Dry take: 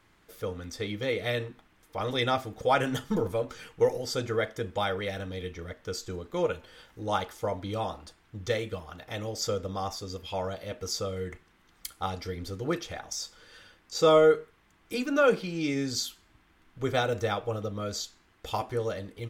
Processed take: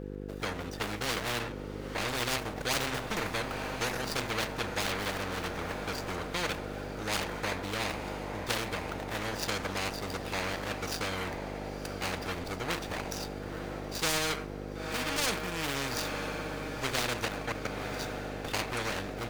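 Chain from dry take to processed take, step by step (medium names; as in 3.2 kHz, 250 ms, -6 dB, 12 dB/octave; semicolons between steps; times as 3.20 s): median filter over 41 samples; 17.25–17.99 s: level held to a coarse grid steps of 16 dB; mains buzz 50 Hz, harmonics 10, -45 dBFS; on a send: echo that smears into a reverb 981 ms, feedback 54%, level -14 dB; on the sum: spectrum-flattening compressor 4:1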